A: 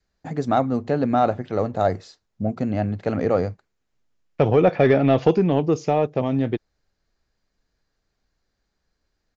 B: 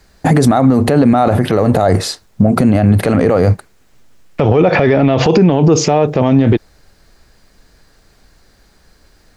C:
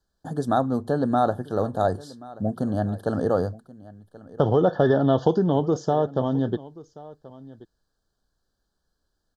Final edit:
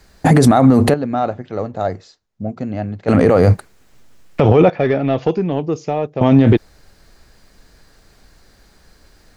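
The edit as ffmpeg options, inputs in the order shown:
ffmpeg -i take0.wav -i take1.wav -filter_complex "[0:a]asplit=2[link_01][link_02];[1:a]asplit=3[link_03][link_04][link_05];[link_03]atrim=end=0.942[link_06];[link_01]atrim=start=0.938:end=3.082[link_07];[link_04]atrim=start=3.078:end=4.702[link_08];[link_02]atrim=start=4.698:end=6.212[link_09];[link_05]atrim=start=6.208[link_10];[link_06][link_07]acrossfade=duration=0.004:curve1=hsin:curve2=hsin[link_11];[link_11][link_08]acrossfade=duration=0.004:curve1=hsin:curve2=hsin[link_12];[link_12][link_09]acrossfade=duration=0.004:curve1=hsin:curve2=hsin[link_13];[link_13][link_10]acrossfade=duration=0.004:curve1=hsin:curve2=hsin" out.wav

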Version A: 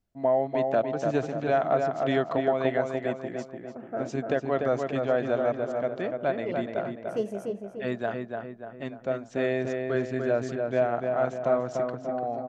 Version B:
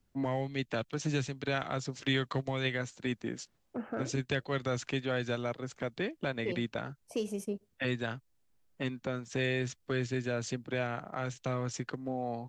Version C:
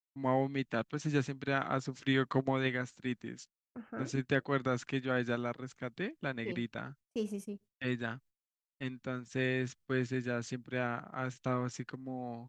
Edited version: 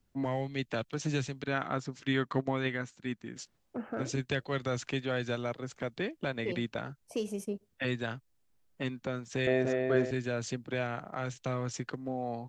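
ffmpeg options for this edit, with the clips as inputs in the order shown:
ffmpeg -i take0.wav -i take1.wav -i take2.wav -filter_complex "[1:a]asplit=3[link_01][link_02][link_03];[link_01]atrim=end=1.442[link_04];[2:a]atrim=start=1.438:end=3.362[link_05];[link_02]atrim=start=3.358:end=9.472[link_06];[0:a]atrim=start=9.468:end=10.112[link_07];[link_03]atrim=start=10.108[link_08];[link_04][link_05]acrossfade=duration=0.004:curve1=hsin:curve2=hsin[link_09];[link_09][link_06]acrossfade=duration=0.004:curve1=hsin:curve2=hsin[link_10];[link_10][link_07]acrossfade=duration=0.004:curve1=hsin:curve2=hsin[link_11];[link_11][link_08]acrossfade=duration=0.004:curve1=hsin:curve2=hsin" out.wav

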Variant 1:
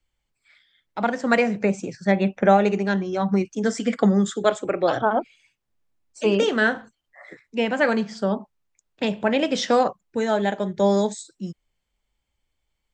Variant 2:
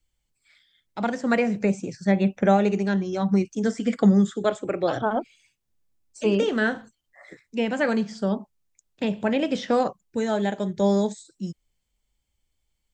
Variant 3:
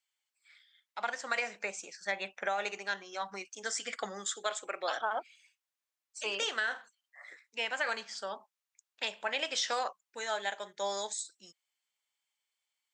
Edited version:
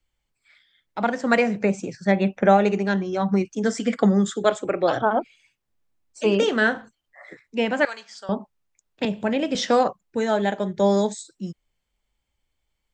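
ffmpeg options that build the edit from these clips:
ffmpeg -i take0.wav -i take1.wav -i take2.wav -filter_complex "[0:a]asplit=3[link_01][link_02][link_03];[link_01]atrim=end=7.852[link_04];[2:a]atrim=start=7.848:end=8.292[link_05];[link_02]atrim=start=8.288:end=9.052[link_06];[1:a]atrim=start=9.048:end=9.552[link_07];[link_03]atrim=start=9.548[link_08];[link_04][link_05]acrossfade=duration=0.004:curve1=hsin:curve2=hsin[link_09];[link_09][link_06]acrossfade=duration=0.004:curve1=hsin:curve2=hsin[link_10];[link_10][link_07]acrossfade=duration=0.004:curve1=hsin:curve2=hsin[link_11];[link_11][link_08]acrossfade=duration=0.004:curve1=hsin:curve2=hsin" out.wav

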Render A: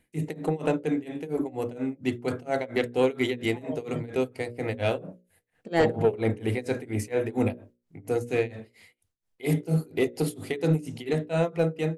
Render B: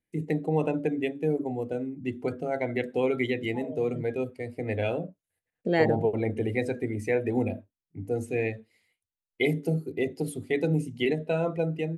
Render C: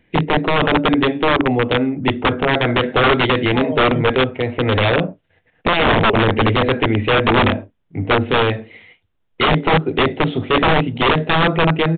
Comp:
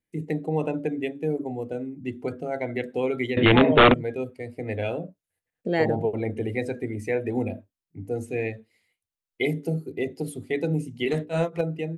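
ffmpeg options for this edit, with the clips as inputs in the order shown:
ffmpeg -i take0.wav -i take1.wav -i take2.wav -filter_complex "[1:a]asplit=3[link_01][link_02][link_03];[link_01]atrim=end=3.372[link_04];[2:a]atrim=start=3.368:end=3.942[link_05];[link_02]atrim=start=3.938:end=11.082[link_06];[0:a]atrim=start=11.078:end=11.612[link_07];[link_03]atrim=start=11.608[link_08];[link_04][link_05]acrossfade=duration=0.004:curve1=hsin:curve2=hsin[link_09];[link_09][link_06]acrossfade=duration=0.004:curve1=hsin:curve2=hsin[link_10];[link_10][link_07]acrossfade=duration=0.004:curve1=hsin:curve2=hsin[link_11];[link_11][link_08]acrossfade=duration=0.004:curve1=hsin:curve2=hsin" out.wav

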